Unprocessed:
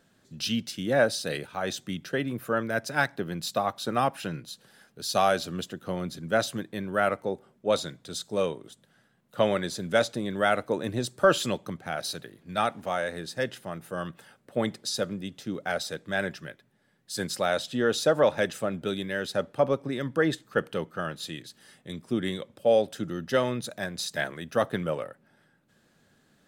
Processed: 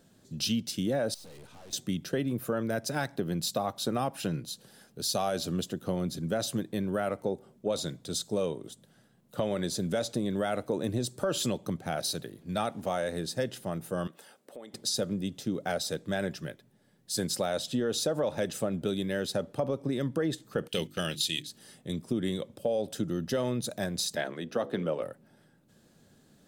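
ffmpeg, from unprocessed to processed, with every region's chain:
-filter_complex "[0:a]asettb=1/sr,asplit=3[a][b][c];[a]atrim=end=1.144[d];[b]atrim=start=1.14:end=1.73,asetpts=PTS-STARTPTS,afade=t=in:d=0.004:c=qsin,afade=t=out:st=0.586:d=0.004:c=qsin,lowpass=11k,acompressor=threshold=-36dB:ratio=4:attack=3.2:release=140:knee=1:detection=peak,aeval=exprs='(tanh(355*val(0)+0.65)-tanh(0.65))/355':c=same[e];[c]atrim=start=1.726[f];[d][e]acrossfade=d=0.004:c1=hsin:c2=qsin[g];[g][f]acrossfade=d=0.004:c1=qsin:c2=hsin,asettb=1/sr,asplit=3[h][i][j];[h]atrim=end=14.074[k];[i]atrim=start=14.07:end=14.74,asetpts=PTS-STARTPTS,afade=t=in:d=0.004:c=qsin,afade=t=out:st=0.666:d=0.004:c=qsin,highpass=360,acompressor=threshold=-46dB:ratio=5:attack=3.2:release=140:knee=1:detection=peak[l];[j]atrim=start=14.736[m];[k][l]acrossfade=d=0.004:c1=hsin:c2=qsin[n];[n][m]acrossfade=d=0.004:c1=qsin:c2=hsin,asettb=1/sr,asplit=3[o][p][q];[o]atrim=end=20.684[r];[p]atrim=start=20.68:end=21.47,asetpts=PTS-STARTPTS,afade=t=in:d=0.004:c=qsin,afade=t=out:st=0.786:d=0.004:c=qsin,agate=range=-10dB:threshold=-42dB:ratio=16:release=100:detection=peak,highshelf=f=1.8k:t=q:w=1.5:g=13.5,bandreject=f=50:t=h:w=6,bandreject=f=100:t=h:w=6,bandreject=f=150:t=h:w=6,bandreject=f=200:t=h:w=6,bandreject=f=250:t=h:w=6,bandreject=f=300:t=h:w=6,bandreject=f=350:t=h:w=6[s];[q]atrim=start=21.466[t];[r][s]acrossfade=d=0.004:c1=hsin:c2=qsin[u];[u][t]acrossfade=d=0.004:c1=qsin:c2=hsin,asettb=1/sr,asplit=3[v][w][x];[v]atrim=end=24.154[y];[w]atrim=start=24.15:end=25.03,asetpts=PTS-STARTPTS,afade=t=in:d=0.004:c=qsin,afade=t=out:st=0.876:d=0.004:c=qsin,acrossover=split=180 5300:gain=0.2 1 0.224[z][aa][ab];[z][aa][ab]amix=inputs=3:normalize=0,bandreject=f=70.27:t=h:w=4,bandreject=f=140.54:t=h:w=4,bandreject=f=210.81:t=h:w=4,bandreject=f=281.08:t=h:w=4,bandreject=f=351.35:t=h:w=4,bandreject=f=421.62:t=h:w=4,bandreject=f=491.89:t=h:w=4[ac];[x]atrim=start=25.026[ad];[y][ac]acrossfade=d=0.004:c1=hsin:c2=qsin[ae];[ae][ad]acrossfade=d=0.004:c1=qsin:c2=hsin,equalizer=f=1.7k:w=0.63:g=-9,alimiter=limit=-20.5dB:level=0:latency=1:release=38,acompressor=threshold=-32dB:ratio=3,volume=5dB"

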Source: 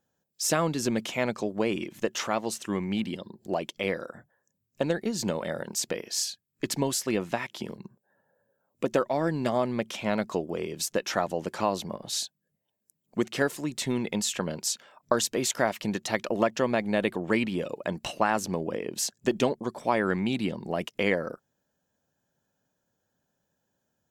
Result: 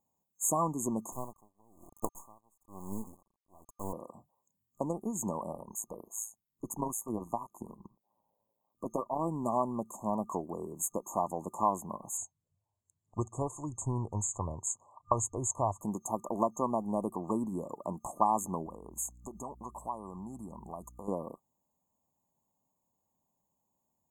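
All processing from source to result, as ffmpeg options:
-filter_complex "[0:a]asettb=1/sr,asplit=3[a][b][c];[a]atrim=end=1.124[d];[b]atrim=start=1.12:end=3.93,asetpts=PTS-STARTPTS,afade=t=in:d=0.004:c=qsin,afade=t=out:st=2.806:d=0.004:c=qsin,acrusher=bits=4:dc=4:mix=0:aa=0.000001,aeval=exprs='val(0)*pow(10,-33*(0.5-0.5*cos(2*PI*1.1*n/s))/20)':c=same[e];[c]atrim=start=3.926[f];[d][e]acrossfade=d=0.004:c1=hsin:c2=qsin[g];[g][f]acrossfade=d=0.004:c1=qsin:c2=hsin,asettb=1/sr,asplit=3[h][i][j];[h]atrim=end=5.524[k];[i]atrim=start=5.52:end=9.2,asetpts=PTS-STARTPTS,afade=t=in:d=0.004:c=qsin,afade=t=out:st=3.676:d=0.004:c=qsin,equalizer=f=7.7k:w=6.4:g=-8.5,tremolo=f=110:d=0.667[l];[j]atrim=start=9.196[m];[k][l]acrossfade=d=0.004:c1=hsin:c2=qsin[n];[n][m]acrossfade=d=0.004:c1=qsin:c2=hsin,asettb=1/sr,asplit=3[o][p][q];[o]atrim=end=12.174[r];[p]atrim=start=12.17:end=15.81,asetpts=PTS-STARTPTS,afade=t=in:d=0.004:c=qsin,afade=t=out:st=3.636:d=0.004:c=qsin,lowpass=f=7.9k:w=0.5412,lowpass=f=7.9k:w=1.3066,lowshelf=f=140:t=q:w=3:g=11.5[s];[q]atrim=start=15.806[t];[r][s]acrossfade=d=0.004:c1=hsin:c2=qsin[u];[u][t]acrossfade=d=0.004:c1=qsin:c2=hsin,asettb=1/sr,asplit=3[v][w][x];[v]atrim=end=18.664[y];[w]atrim=start=18.66:end=21.08,asetpts=PTS-STARTPTS,afade=t=in:d=0.004:c=qsin,afade=t=out:st=2.416:d=0.004:c=qsin,aeval=exprs='val(0)+0.00398*(sin(2*PI*60*n/s)+sin(2*PI*2*60*n/s)/2+sin(2*PI*3*60*n/s)/3+sin(2*PI*4*60*n/s)/4+sin(2*PI*5*60*n/s)/5)':c=same,acompressor=threshold=-30dB:ratio=2.5:attack=3.2:release=140:knee=1:detection=peak,equalizer=f=310:w=0.56:g=-6.5[z];[x]atrim=start=21.076[aa];[y][z]acrossfade=d=0.004:c1=hsin:c2=qsin[ab];[ab][aa]acrossfade=d=0.004:c1=qsin:c2=hsin,equalizer=f=125:t=o:w=1:g=-4,equalizer=f=500:t=o:w=1:g=-9,equalizer=f=1k:t=o:w=1:g=7,equalizer=f=2k:t=o:w=1:g=-11,afftfilt=real='re*(1-between(b*sr/4096,1200,6400))':imag='im*(1-between(b*sr/4096,1200,6400))':win_size=4096:overlap=0.75,lowshelf=f=470:g=-3.5"

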